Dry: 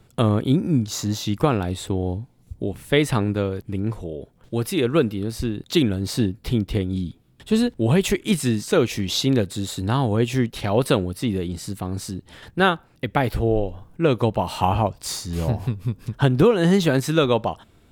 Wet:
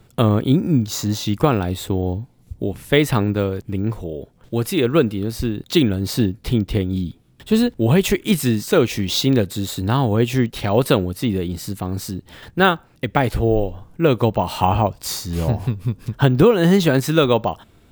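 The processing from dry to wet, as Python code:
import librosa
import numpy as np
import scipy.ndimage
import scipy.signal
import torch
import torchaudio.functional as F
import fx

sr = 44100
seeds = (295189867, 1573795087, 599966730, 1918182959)

y = np.repeat(x[::2], 2)[:len(x)]
y = y * 10.0 ** (3.0 / 20.0)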